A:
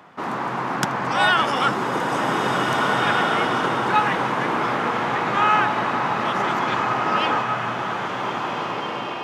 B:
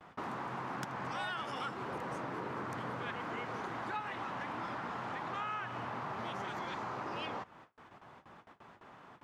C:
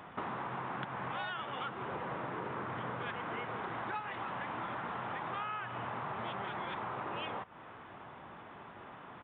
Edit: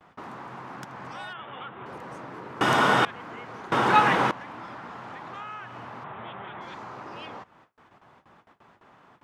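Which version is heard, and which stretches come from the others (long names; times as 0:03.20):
B
0:01.33–0:01.86: punch in from C
0:02.61–0:03.05: punch in from A
0:03.72–0:04.31: punch in from A
0:06.04–0:06.61: punch in from C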